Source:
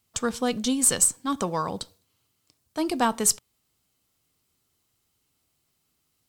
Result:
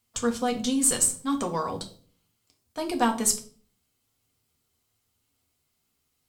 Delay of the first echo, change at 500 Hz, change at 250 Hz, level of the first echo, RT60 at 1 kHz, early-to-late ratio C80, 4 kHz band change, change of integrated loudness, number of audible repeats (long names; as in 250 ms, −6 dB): no echo audible, −0.5 dB, 0.0 dB, no echo audible, 0.40 s, 18.0 dB, −2.0 dB, −1.5 dB, no echo audible